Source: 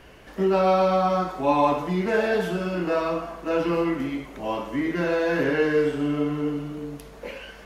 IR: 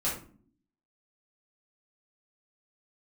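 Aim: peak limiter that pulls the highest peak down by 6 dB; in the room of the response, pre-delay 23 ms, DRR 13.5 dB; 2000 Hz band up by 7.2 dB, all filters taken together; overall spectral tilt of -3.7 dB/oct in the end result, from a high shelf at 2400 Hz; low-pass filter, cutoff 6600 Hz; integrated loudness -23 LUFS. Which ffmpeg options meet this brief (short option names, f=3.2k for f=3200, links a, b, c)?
-filter_complex "[0:a]lowpass=6.6k,equalizer=f=2k:t=o:g=6,highshelf=f=2.4k:g=7.5,alimiter=limit=-13dB:level=0:latency=1,asplit=2[a][b];[1:a]atrim=start_sample=2205,adelay=23[c];[b][c]afir=irnorm=-1:irlink=0,volume=-20.5dB[d];[a][d]amix=inputs=2:normalize=0,volume=0.5dB"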